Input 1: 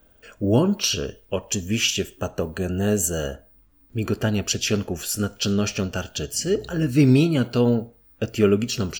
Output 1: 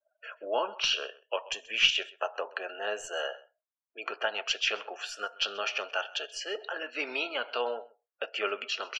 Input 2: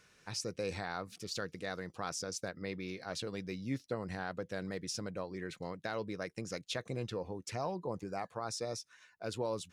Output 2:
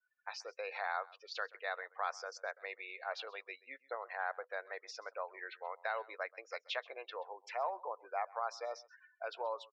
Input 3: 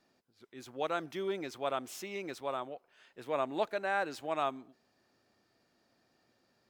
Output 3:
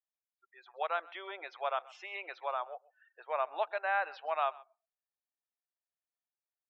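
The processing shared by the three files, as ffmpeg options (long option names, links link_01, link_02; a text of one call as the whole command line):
ffmpeg -i in.wav -filter_complex "[0:a]asplit=2[link_01][link_02];[link_02]acompressor=threshold=-35dB:ratio=6,volume=0dB[link_03];[link_01][link_03]amix=inputs=2:normalize=0,highpass=frequency=670:width=0.5412,highpass=frequency=670:width=1.3066,adynamicequalizer=threshold=0.00708:dfrequency=2800:dqfactor=2.3:tfrequency=2800:tqfactor=2.3:attack=5:release=100:ratio=0.375:range=2:mode=boostabove:tftype=bell,aeval=exprs='0.708*(cos(1*acos(clip(val(0)/0.708,-1,1)))-cos(1*PI/2))+0.0891*(cos(3*acos(clip(val(0)/0.708,-1,1)))-cos(3*PI/2))+0.0126*(cos(6*acos(clip(val(0)/0.708,-1,1)))-cos(6*PI/2))+0.00631*(cos(8*acos(clip(val(0)/0.708,-1,1)))-cos(8*PI/2))':channel_layout=same,acontrast=35,aemphasis=mode=reproduction:type=75fm,afftdn=noise_reduction=35:noise_floor=-48,lowpass=4400,aecho=1:1:131:0.0794,volume=-2dB" out.wav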